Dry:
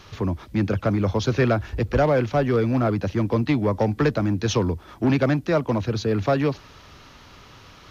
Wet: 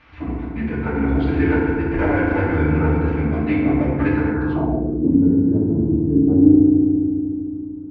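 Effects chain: formant-preserving pitch shift -7 st; FDN reverb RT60 2.5 s, low-frequency decay 1.45×, high-frequency decay 0.4×, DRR -6.5 dB; low-pass sweep 2.2 kHz -> 290 Hz, 4.28–5.12 s; trim -8 dB

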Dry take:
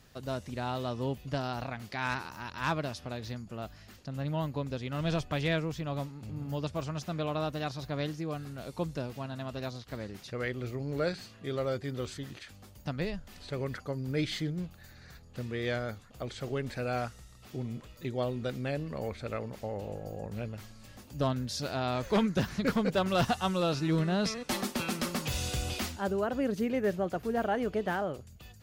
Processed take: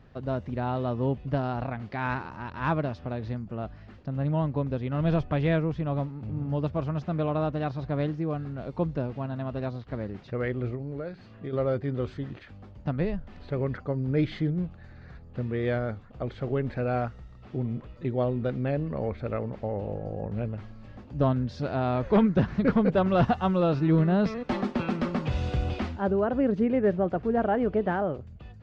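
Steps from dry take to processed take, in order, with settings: 10.74–11.53 s: compression 5:1, threshold -39 dBFS, peak gain reduction 11.5 dB; tape spacing loss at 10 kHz 41 dB; trim +7.5 dB

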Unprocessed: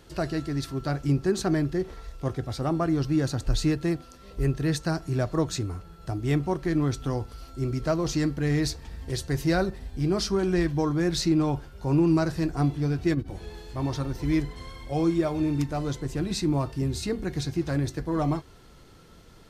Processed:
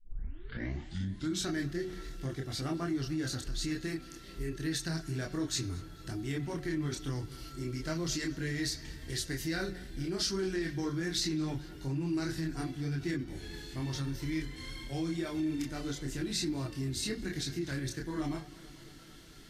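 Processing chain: tape start-up on the opening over 1.52 s; high-order bell 760 Hz -11 dB; de-hum 182.9 Hz, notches 37; in parallel at +1 dB: compression, threshold -35 dBFS, peak gain reduction 15.5 dB; on the sum: chorus voices 6, 0.32 Hz, delay 27 ms, depth 5 ms; peak limiter -20.5 dBFS, peak gain reduction 9 dB; bass shelf 350 Hz -9.5 dB; band-stop 2.5 kHz, Q 16; on a send: filtered feedback delay 221 ms, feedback 78%, low-pass 4 kHz, level -19.5 dB

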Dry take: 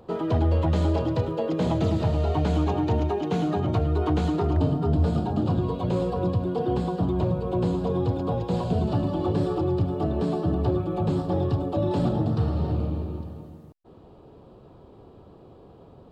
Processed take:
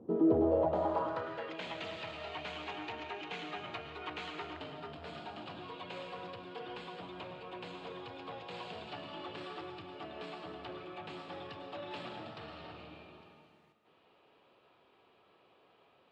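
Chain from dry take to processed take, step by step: algorithmic reverb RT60 0.99 s, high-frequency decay 0.95×, pre-delay 85 ms, DRR 6.5 dB; saturation -16 dBFS, distortion -19 dB; band-pass sweep 270 Hz -> 2.4 kHz, 0.09–1.58 s; trim +3.5 dB

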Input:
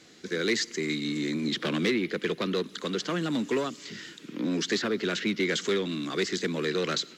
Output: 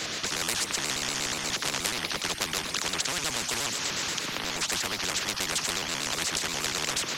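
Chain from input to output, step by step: pitch shift switched off and on -2.5 st, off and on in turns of 60 ms; spectrum-flattening compressor 10:1; trim +4.5 dB

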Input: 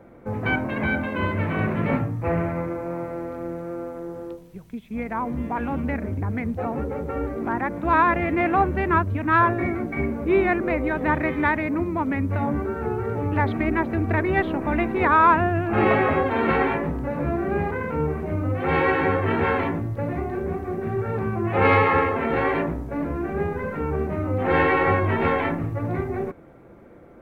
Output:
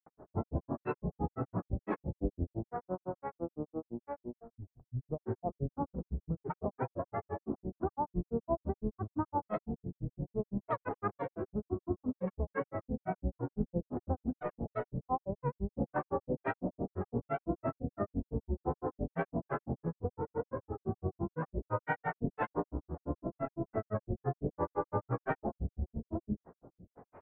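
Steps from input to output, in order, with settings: steep low-pass 1.1 kHz 36 dB/octave; compression, threshold -23 dBFS, peak gain reduction 8.5 dB; granulator 100 ms, grains 5.9 per s, pitch spread up and down by 12 st; trim -3 dB

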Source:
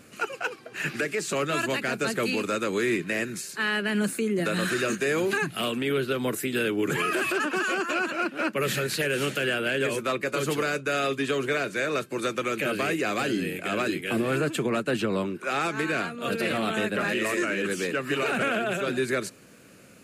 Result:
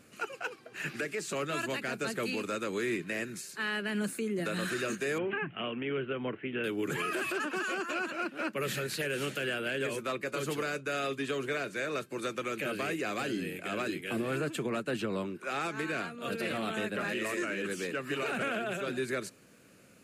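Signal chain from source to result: 5.18–6.64 s: Chebyshev low-pass 3.1 kHz, order 6; trim -7 dB

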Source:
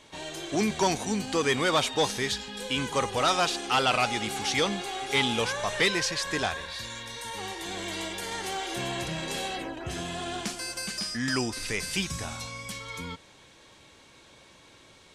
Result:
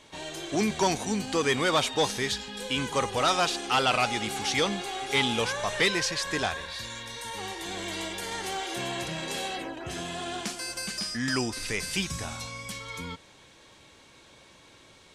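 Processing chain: 8.64–10.68 s: bass shelf 110 Hz -7.5 dB

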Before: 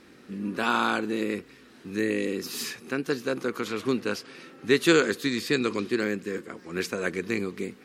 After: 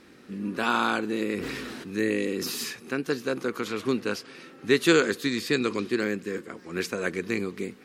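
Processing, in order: 1.34–2.64 s: decay stretcher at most 21 dB/s

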